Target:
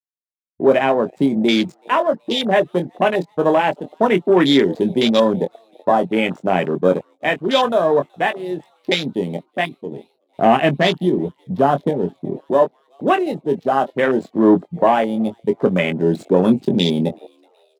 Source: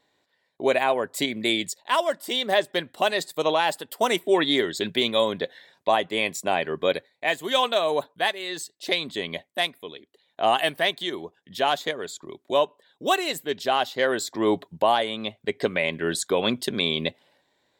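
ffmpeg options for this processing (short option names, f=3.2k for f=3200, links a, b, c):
-filter_complex "[0:a]asettb=1/sr,asplit=3[a][b][c];[a]atrim=end=9.914[d];[b]atrim=start=9.91:end=12.41,asetpts=PTS-STARTPTS,afade=t=in:d=0.004:c=qsin,afade=t=out:st=2.496:d=0.004:c=qsin,lowshelf=f=280:g=10.5[e];[c]atrim=start=12.406[f];[d][e]acrossfade=d=0.004:c1=hsin:c2=qsin[g];[g][f]acrossfade=d=0.004:c1=qsin:c2=hsin,adynamicsmooth=sensitivity=7:basefreq=500,agate=range=-33dB:threshold=-51dB:ratio=3:detection=peak,equalizer=f=170:t=o:w=2:g=12,asplit=5[h][i][j][k][l];[i]adelay=376,afreqshift=120,volume=-23.5dB[m];[j]adelay=752,afreqshift=240,volume=-27.7dB[n];[k]adelay=1128,afreqshift=360,volume=-31.8dB[o];[l]adelay=1504,afreqshift=480,volume=-36dB[p];[h][m][n][o][p]amix=inputs=5:normalize=0,acontrast=35,asplit=2[q][r];[r]adelay=22,volume=-7.5dB[s];[q][s]amix=inputs=2:normalize=0,afwtdn=0.0891,highpass=130,volume=-1dB"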